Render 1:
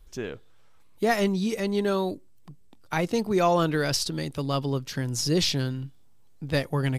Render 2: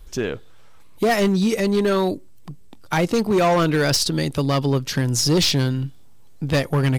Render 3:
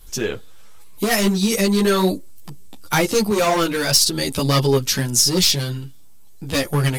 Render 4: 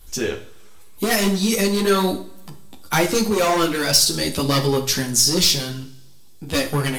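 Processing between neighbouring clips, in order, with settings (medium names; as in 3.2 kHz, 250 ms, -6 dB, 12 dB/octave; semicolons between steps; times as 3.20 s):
in parallel at -2 dB: compression, threshold -30 dBFS, peak gain reduction 12 dB; on the sum: overload inside the chain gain 18.5 dB; trim +5 dB
peaking EQ 14 kHz +13 dB 2 oct; gain riding within 3 dB 0.5 s; three-phase chorus; trim +3 dB
two-slope reverb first 0.52 s, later 2.4 s, from -27 dB, DRR 6 dB; trim -1 dB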